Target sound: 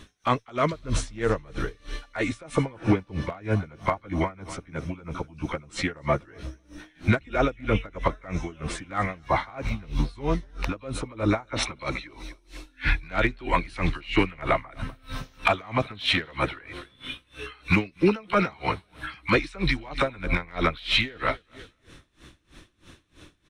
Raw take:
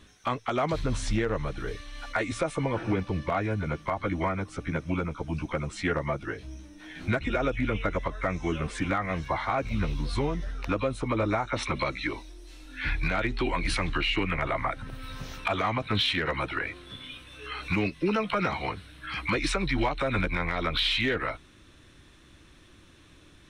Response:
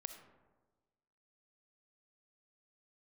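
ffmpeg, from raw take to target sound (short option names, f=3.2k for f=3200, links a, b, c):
-filter_complex "[0:a]asettb=1/sr,asplit=3[a][b][c];[a]atrim=end=0.574[d];[b]atrim=start=0.57:end=0.97,asetpts=PTS-STARTPTS,afade=t=in:d=0.004:c=qsin,afade=t=out:st=0.396:d=0.004:c=qsin,asuperstop=centerf=790:order=4:qfactor=3[e];[c]atrim=start=0.966[f];[d][e]acrossfade=d=0.004:c1=hsin:c2=qsin[g];[g][f]acrossfade=d=0.004:c1=qsin:c2=hsin,aecho=1:1:248|496|744:0.1|0.045|0.0202,aeval=exprs='val(0)*pow(10,-26*(0.5-0.5*cos(2*PI*3.1*n/s))/20)':c=same,volume=8dB"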